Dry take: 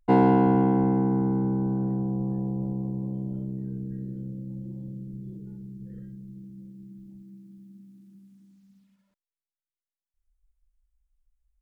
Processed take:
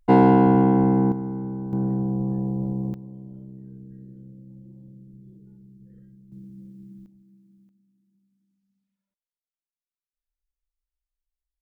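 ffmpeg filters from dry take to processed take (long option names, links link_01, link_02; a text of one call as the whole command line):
ffmpeg -i in.wav -af "asetnsamples=nb_out_samples=441:pad=0,asendcmd='1.12 volume volume -5dB;1.73 volume volume 3dB;2.94 volume volume -8.5dB;6.32 volume volume 1dB;7.06 volume volume -8.5dB;7.69 volume volume -17dB',volume=4dB" out.wav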